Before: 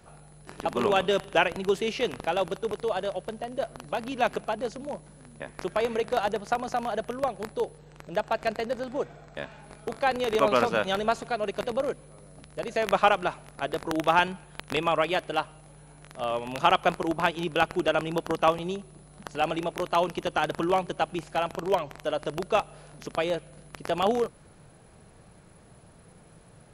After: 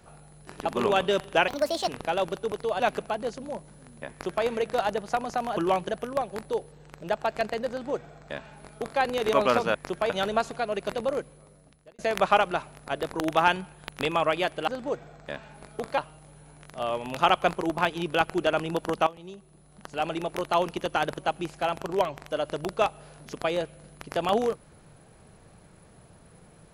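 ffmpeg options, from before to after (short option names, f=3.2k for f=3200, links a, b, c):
-filter_complex "[0:a]asplit=13[a][b][c][d][e][f][g][h][i][j][k][l][m];[a]atrim=end=1.484[n];[b]atrim=start=1.48:end=2.07,asetpts=PTS-STARTPTS,asetrate=65709,aresample=44100,atrim=end_sample=17462,asetpts=PTS-STARTPTS[o];[c]atrim=start=2.066:end=2.992[p];[d]atrim=start=4.178:end=6.952[q];[e]atrim=start=20.588:end=20.912[r];[f]atrim=start=6.948:end=10.812[s];[g]atrim=start=5.488:end=5.842[t];[h]atrim=start=10.808:end=12.7,asetpts=PTS-STARTPTS,afade=t=out:st=1.072:d=0.82[u];[i]atrim=start=12.7:end=15.392,asetpts=PTS-STARTPTS,afade=t=in:d=0.004:c=hsin[v];[j]atrim=start=8.758:end=10.062[w];[k]atrim=start=15.388:end=18.48,asetpts=PTS-STARTPTS,afade=t=out:st=3.088:d=0.004:c=hsin:silence=0.149624[x];[l]atrim=start=18.48:end=20.592,asetpts=PTS-STARTPTS,afade=t=in:d=1.29:silence=0.149624[y];[m]atrim=start=20.908[z];[n][o]acrossfade=d=0.004:c1=hsin:c2=hsin[aa];[aa][p]acrossfade=d=0.004:c1=hsin:c2=hsin[ab];[ab][q]acrossfade=d=0.004:c1=hsin:c2=hsin[ac];[ac][r]acrossfade=d=0.004:c1=hsin:c2=hsin[ad];[ad][s]acrossfade=d=0.004:c1=hsin:c2=hsin[ae];[ae][t]acrossfade=d=0.004:c1=hsin:c2=hsin[af];[u][v]concat=n=2:v=0:a=1[ag];[af][ag]acrossfade=d=0.004:c1=hsin:c2=hsin[ah];[ah][w]acrossfade=d=0.004:c1=hsin:c2=hsin[ai];[x][y]concat=n=2:v=0:a=1[aj];[ai][aj]acrossfade=d=0.004:c1=hsin:c2=hsin[ak];[ak][z]acrossfade=d=0.004:c1=hsin:c2=hsin"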